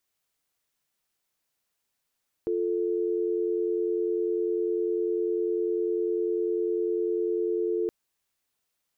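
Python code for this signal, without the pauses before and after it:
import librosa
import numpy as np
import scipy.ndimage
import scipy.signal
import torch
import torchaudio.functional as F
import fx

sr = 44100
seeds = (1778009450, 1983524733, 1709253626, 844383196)

y = fx.call_progress(sr, length_s=5.42, kind='dial tone', level_db=-27.0)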